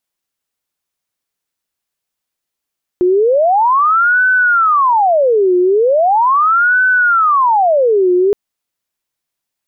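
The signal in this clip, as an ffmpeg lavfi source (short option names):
-f lavfi -i "aevalsrc='0.398*sin(2*PI*(934*t-576/(2*PI*0.39)*sin(2*PI*0.39*t)))':d=5.32:s=44100"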